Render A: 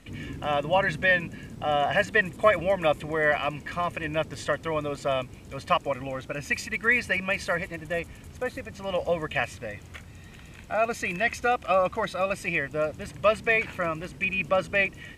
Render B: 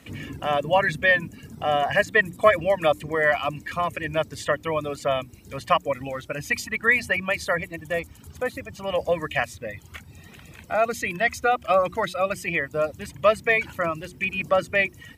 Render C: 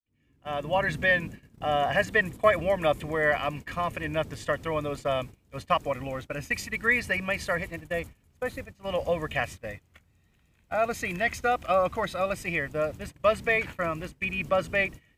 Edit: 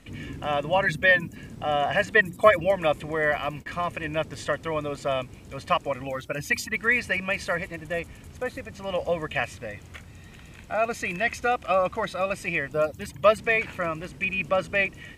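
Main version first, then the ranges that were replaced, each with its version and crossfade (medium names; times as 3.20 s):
A
0.86–1.36 s: from B
2.14–2.71 s: from B
3.25–3.66 s: from C
6.07–6.76 s: from B
12.73–13.38 s: from B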